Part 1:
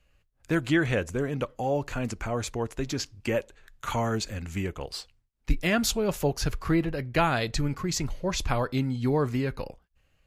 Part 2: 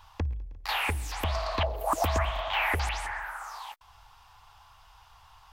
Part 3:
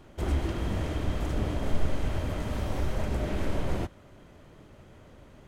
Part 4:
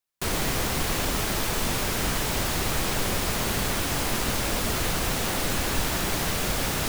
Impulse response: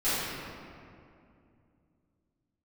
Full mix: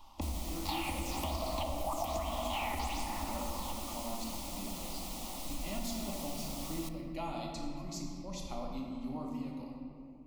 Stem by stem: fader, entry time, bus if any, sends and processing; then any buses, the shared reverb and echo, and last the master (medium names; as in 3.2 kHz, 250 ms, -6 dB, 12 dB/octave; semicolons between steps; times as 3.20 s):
-16.5 dB, 0.00 s, send -9 dB, none
-2.5 dB, 0.00 s, send -14.5 dB, none
-14.0 dB, 0.00 s, no send, none
-14.5 dB, 0.00 s, send -22.5 dB, none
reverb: on, RT60 2.5 s, pre-delay 4 ms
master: static phaser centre 430 Hz, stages 6; compression 6:1, threshold -32 dBFS, peak gain reduction 9 dB